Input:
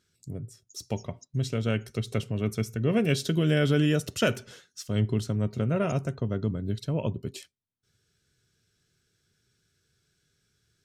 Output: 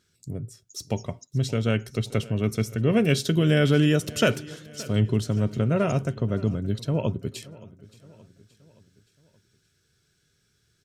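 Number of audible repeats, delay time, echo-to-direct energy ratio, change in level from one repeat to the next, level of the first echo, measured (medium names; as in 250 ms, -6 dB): 3, 573 ms, -19.0 dB, -6.0 dB, -20.5 dB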